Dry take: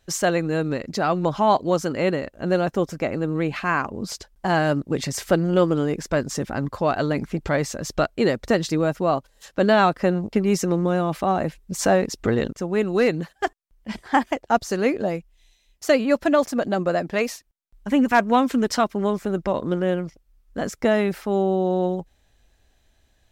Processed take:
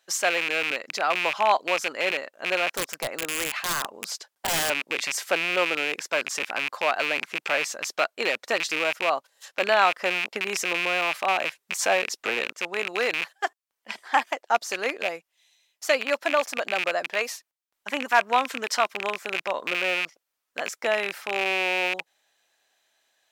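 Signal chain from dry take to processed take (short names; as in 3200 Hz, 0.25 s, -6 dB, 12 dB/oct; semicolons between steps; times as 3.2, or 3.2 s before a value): rattling part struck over -30 dBFS, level -14 dBFS; HPF 730 Hz 12 dB/oct; 2.72–4.7 wrapped overs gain 19 dB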